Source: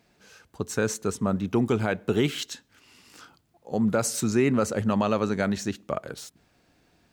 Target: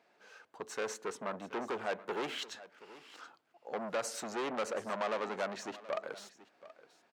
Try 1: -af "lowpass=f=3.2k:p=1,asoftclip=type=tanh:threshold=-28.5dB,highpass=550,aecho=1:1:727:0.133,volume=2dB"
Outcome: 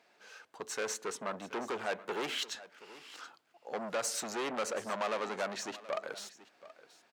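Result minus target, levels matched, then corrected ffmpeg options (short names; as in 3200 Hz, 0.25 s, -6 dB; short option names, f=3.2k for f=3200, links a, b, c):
4000 Hz band +3.0 dB
-af "lowpass=f=1.3k:p=1,asoftclip=type=tanh:threshold=-28.5dB,highpass=550,aecho=1:1:727:0.133,volume=2dB"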